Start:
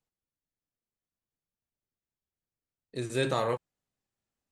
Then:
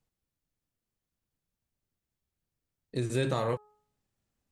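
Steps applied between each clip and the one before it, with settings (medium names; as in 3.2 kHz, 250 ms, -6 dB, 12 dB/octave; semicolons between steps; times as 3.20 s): bass shelf 240 Hz +8.5 dB; de-hum 420.7 Hz, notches 4; compression 2:1, threshold -33 dBFS, peak gain reduction 7.5 dB; trim +3 dB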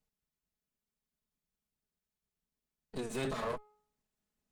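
comb filter that takes the minimum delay 4.7 ms; trim -3 dB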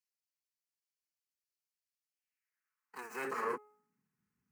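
median filter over 5 samples; static phaser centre 1.5 kHz, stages 4; high-pass sweep 3.8 kHz -> 110 Hz, 2.06–4.29 s; trim +4 dB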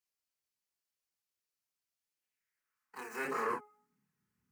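chorus voices 2, 0.89 Hz, delay 28 ms, depth 1.6 ms; trim +5 dB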